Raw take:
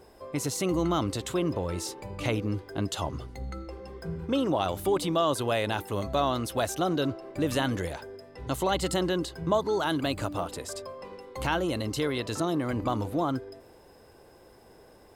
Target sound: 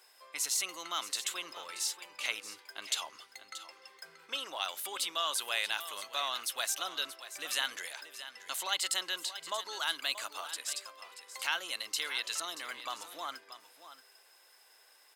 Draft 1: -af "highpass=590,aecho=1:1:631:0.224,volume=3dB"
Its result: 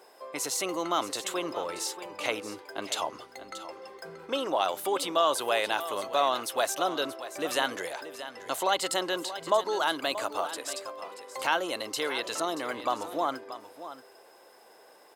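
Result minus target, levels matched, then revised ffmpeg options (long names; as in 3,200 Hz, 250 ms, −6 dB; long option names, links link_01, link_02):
500 Hz band +12.5 dB
-af "highpass=1900,aecho=1:1:631:0.224,volume=3dB"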